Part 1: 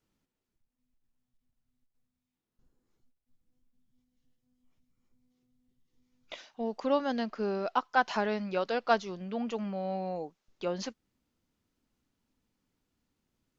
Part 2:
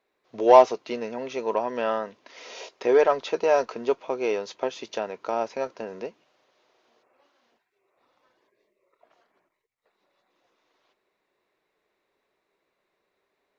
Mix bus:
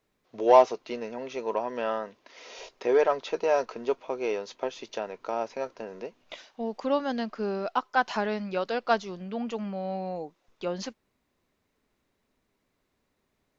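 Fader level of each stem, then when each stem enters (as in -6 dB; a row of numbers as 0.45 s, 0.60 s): +1.5 dB, -3.5 dB; 0.00 s, 0.00 s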